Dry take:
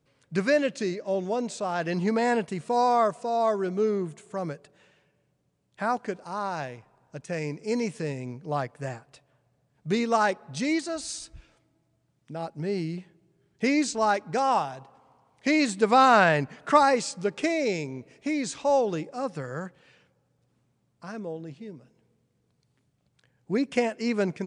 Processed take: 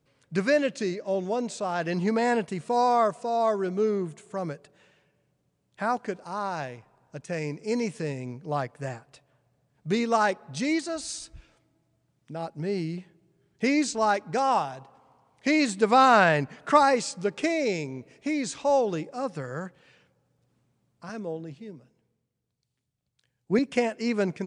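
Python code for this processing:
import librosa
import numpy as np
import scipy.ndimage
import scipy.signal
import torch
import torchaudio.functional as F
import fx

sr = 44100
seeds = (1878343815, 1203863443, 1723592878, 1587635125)

y = fx.band_widen(x, sr, depth_pct=40, at=(21.09, 23.59))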